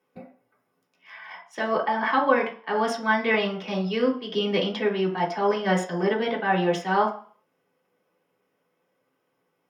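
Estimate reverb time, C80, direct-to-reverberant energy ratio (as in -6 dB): 0.45 s, 14.0 dB, -3.5 dB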